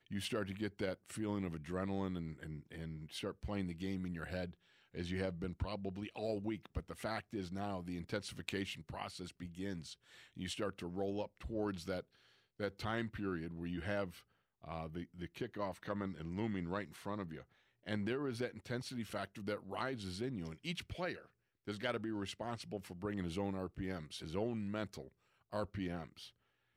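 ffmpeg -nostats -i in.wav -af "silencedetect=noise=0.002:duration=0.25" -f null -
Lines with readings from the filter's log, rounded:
silence_start: 4.54
silence_end: 4.94 | silence_duration: 0.40
silence_start: 12.02
silence_end: 12.60 | silence_duration: 0.57
silence_start: 14.21
silence_end: 14.63 | silence_duration: 0.43
silence_start: 17.42
silence_end: 17.86 | silence_duration: 0.44
silence_start: 21.26
silence_end: 21.67 | silence_duration: 0.42
silence_start: 25.08
silence_end: 25.52 | silence_duration: 0.44
silence_start: 26.30
silence_end: 26.76 | silence_duration: 0.47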